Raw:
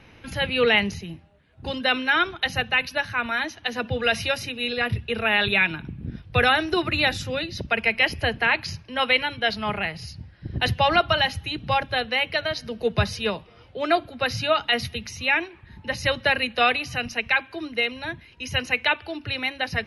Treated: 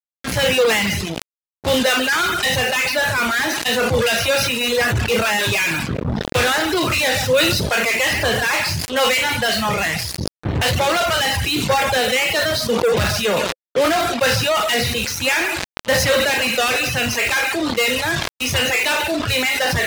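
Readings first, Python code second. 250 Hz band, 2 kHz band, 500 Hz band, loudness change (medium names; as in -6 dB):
+7.0 dB, +5.0 dB, +7.5 dB, +5.5 dB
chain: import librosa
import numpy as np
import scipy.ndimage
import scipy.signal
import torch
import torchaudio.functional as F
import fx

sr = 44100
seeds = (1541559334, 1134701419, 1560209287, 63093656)

y = fx.spec_trails(x, sr, decay_s=0.51)
y = y + 10.0 ** (-13.0 / 20.0) * np.pad(y, (int(138 * sr / 1000.0), 0))[:len(y)]
y = fx.fuzz(y, sr, gain_db=36.0, gate_db=-34.0)
y = fx.dereverb_blind(y, sr, rt60_s=1.0)
y = scipy.signal.sosfilt(scipy.signal.butter(2, 55.0, 'highpass', fs=sr, output='sos'), y)
y = np.sign(y) * np.maximum(np.abs(y) - 10.0 ** (-48.5 / 20.0), 0.0)
y = fx.dynamic_eq(y, sr, hz=520.0, q=7.4, threshold_db=-37.0, ratio=4.0, max_db=7)
y = fx.sustainer(y, sr, db_per_s=30.0)
y = y * librosa.db_to_amplitude(-2.0)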